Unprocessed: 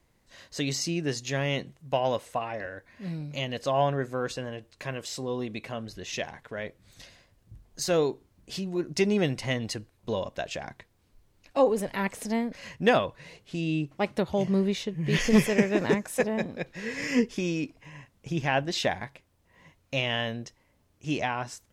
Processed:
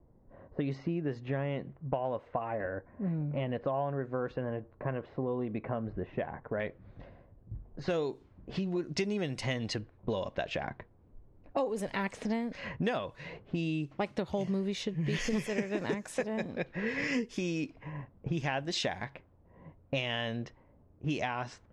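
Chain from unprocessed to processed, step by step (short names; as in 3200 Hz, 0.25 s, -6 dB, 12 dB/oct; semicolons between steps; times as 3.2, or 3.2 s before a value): LPF 1400 Hz 12 dB/oct, from 6.6 s 4200 Hz, from 7.88 s 10000 Hz; low-pass opened by the level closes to 640 Hz, open at -24.5 dBFS; compressor 6:1, threshold -37 dBFS, peak gain reduction 20 dB; gain +6.5 dB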